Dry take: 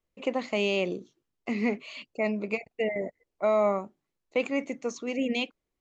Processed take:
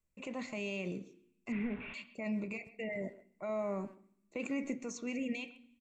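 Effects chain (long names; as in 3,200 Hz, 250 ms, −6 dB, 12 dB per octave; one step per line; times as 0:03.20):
0:01.52–0:01.94: linear delta modulator 16 kbit/s, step −36 dBFS
brickwall limiter −25.5 dBFS, peak gain reduction 11.5 dB
0:03.49–0:04.79: parametric band 350 Hz +6.5 dB 1.4 octaves
far-end echo of a speakerphone 130 ms, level −16 dB
convolution reverb RT60 0.65 s, pre-delay 3 ms, DRR 12.5 dB
level −2.5 dB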